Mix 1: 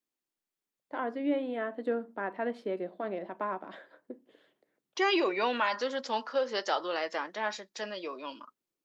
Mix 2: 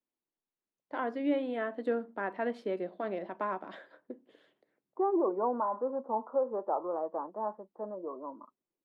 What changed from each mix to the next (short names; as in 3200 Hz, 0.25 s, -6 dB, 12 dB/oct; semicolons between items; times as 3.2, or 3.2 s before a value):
second voice: add steep low-pass 1100 Hz 48 dB/oct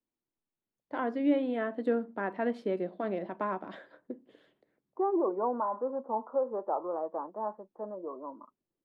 first voice: add low shelf 210 Hz +11 dB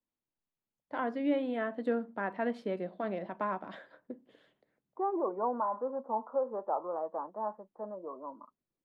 master: add bell 350 Hz -6 dB 0.8 oct